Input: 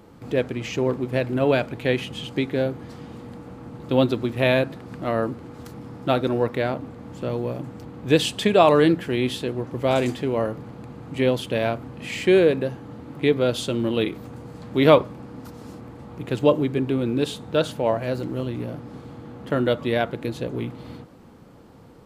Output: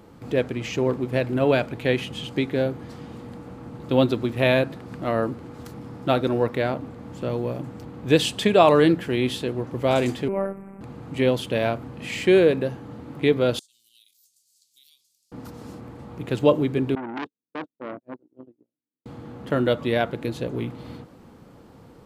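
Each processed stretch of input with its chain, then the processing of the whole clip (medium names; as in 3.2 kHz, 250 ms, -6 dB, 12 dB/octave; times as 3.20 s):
10.28–10.81 s: elliptic band-stop 2.4–8.1 kHz + robot voice 195 Hz
13.59–15.32 s: inverse Chebyshev high-pass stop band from 1.6 kHz, stop band 60 dB + compression 16:1, threshold -51 dBFS
16.95–19.06 s: gate -25 dBFS, range -53 dB + band-pass filter 300 Hz, Q 2.5 + transformer saturation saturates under 1.6 kHz
whole clip: none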